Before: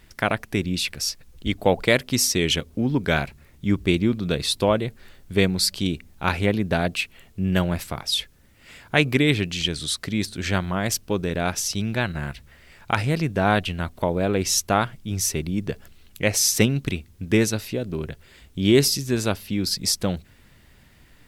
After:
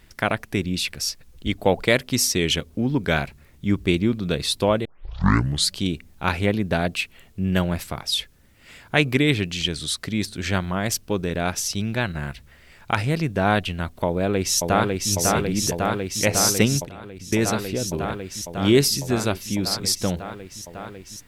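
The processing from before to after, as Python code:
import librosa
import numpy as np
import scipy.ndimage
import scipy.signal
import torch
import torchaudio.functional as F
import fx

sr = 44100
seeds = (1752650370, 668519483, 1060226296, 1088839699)

y = fx.echo_throw(x, sr, start_s=14.06, length_s=1.05, ms=550, feedback_pct=85, wet_db=-2.5)
y = fx.level_steps(y, sr, step_db=19, at=(16.84, 17.43))
y = fx.edit(y, sr, fx.tape_start(start_s=4.85, length_s=0.87), tone=tone)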